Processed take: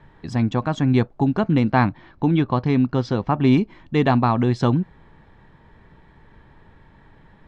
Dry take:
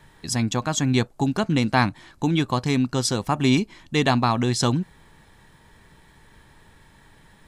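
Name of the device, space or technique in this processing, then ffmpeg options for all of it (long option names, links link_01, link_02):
phone in a pocket: -filter_complex "[0:a]lowpass=3700,highshelf=frequency=2200:gain=-12,asettb=1/sr,asplit=3[link_01][link_02][link_03];[link_01]atrim=end=1.704[link_04];[link_02]atrim=start=1.7:end=3.47,asetpts=PTS-STARTPTS,afade=type=in:duration=0.004:curve=qsin,afade=type=out:start_time=1.766:duration=0.004:curve=qsin,lowpass=frequency=6000:width=0.5412,lowpass=frequency=6000:width=1.3066[link_05];[link_03]atrim=start=3.466[link_06];[link_04][link_05]acrossfade=duration=0.004:curve1=hsin:curve2=qsin[link_07];[link_07][link_06]acrossfade=duration=0.004:curve1=qsin:curve2=hsin,volume=3.5dB"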